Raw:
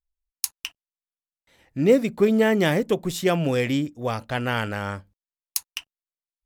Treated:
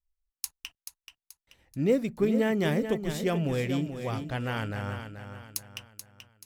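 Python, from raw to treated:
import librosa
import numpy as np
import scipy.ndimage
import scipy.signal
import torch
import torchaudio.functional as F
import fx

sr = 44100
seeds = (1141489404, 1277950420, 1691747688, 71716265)

p1 = fx.low_shelf(x, sr, hz=120.0, db=12.0)
p2 = p1 + fx.echo_feedback(p1, sr, ms=432, feedback_pct=40, wet_db=-9.0, dry=0)
y = p2 * librosa.db_to_amplitude(-8.5)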